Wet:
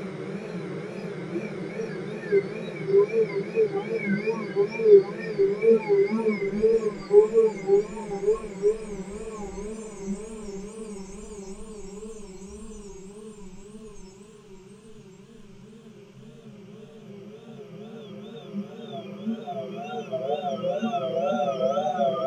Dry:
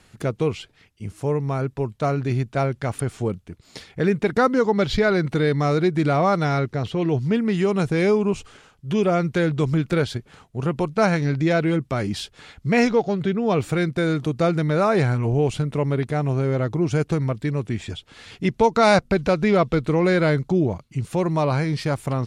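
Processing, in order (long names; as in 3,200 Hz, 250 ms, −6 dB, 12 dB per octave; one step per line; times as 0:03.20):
extreme stretch with random phases 19×, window 1.00 s, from 0:07.82
noise reduction from a noise print of the clip's start 18 dB
tape wow and flutter 120 cents
level +4 dB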